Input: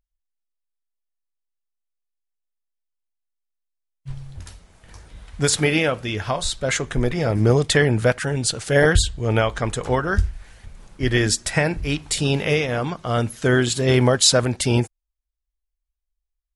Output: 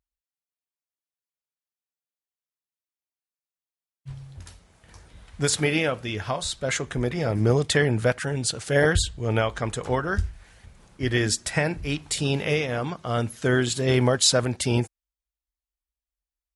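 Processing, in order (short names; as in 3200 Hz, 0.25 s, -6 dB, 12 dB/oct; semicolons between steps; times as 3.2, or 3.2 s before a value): HPF 52 Hz; gain -4 dB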